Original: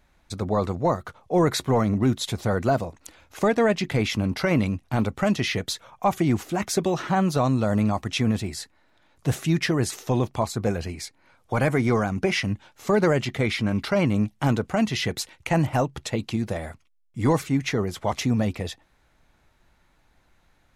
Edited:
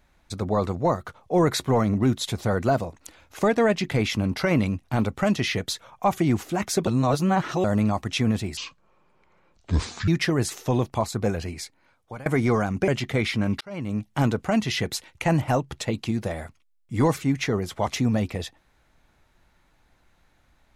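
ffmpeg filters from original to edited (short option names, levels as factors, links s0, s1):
-filter_complex "[0:a]asplit=8[s0][s1][s2][s3][s4][s5][s6][s7];[s0]atrim=end=6.872[s8];[s1]atrim=start=6.868:end=7.642,asetpts=PTS-STARTPTS,areverse[s9];[s2]atrim=start=7.638:end=8.574[s10];[s3]atrim=start=8.57:end=9.49,asetpts=PTS-STARTPTS,asetrate=26901,aresample=44100,atrim=end_sample=66511,asetpts=PTS-STARTPTS[s11];[s4]atrim=start=9.486:end=11.67,asetpts=PTS-STARTPTS,afade=t=out:st=1.534:d=0.65:silence=0.0668344[s12];[s5]atrim=start=11.67:end=12.292,asetpts=PTS-STARTPTS,afade=t=in:d=0.004:c=hsin:silence=0.0668344[s13];[s6]atrim=start=13.128:end=13.86,asetpts=PTS-STARTPTS,afade=t=out:st=0.728:d=0.004:c=hsin[s14];[s7]atrim=start=13.86,asetpts=PTS-STARTPTS,afade=t=in:d=0.6[s15];[s8][s9]acrossfade=d=0.004:c1=hsin:c2=hsin[s16];[s16][s10]acrossfade=d=0.004:c1=hsin:c2=hsin[s17];[s17][s11]acrossfade=d=0.004:c1=hsin:c2=hsin[s18];[s12][s13]concat=n=2:v=0:a=1[s19];[s18][s19]acrossfade=d=0.004:c1=hsin:c2=hsin[s20];[s14][s15]concat=n=2:v=0:a=1[s21];[s20][s21]acrossfade=d=0.004:c1=hsin:c2=hsin"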